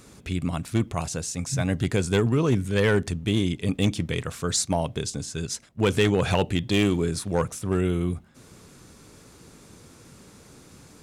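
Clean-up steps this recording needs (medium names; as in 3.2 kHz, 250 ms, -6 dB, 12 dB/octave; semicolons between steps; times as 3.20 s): clip repair -14 dBFS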